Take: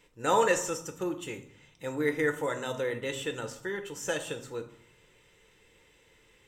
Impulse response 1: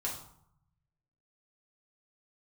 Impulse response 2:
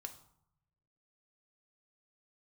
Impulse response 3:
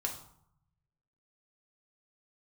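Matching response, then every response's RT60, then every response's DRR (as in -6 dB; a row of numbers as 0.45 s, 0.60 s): 2; 0.70 s, 0.70 s, 0.70 s; -4.0 dB, 5.5 dB, 0.5 dB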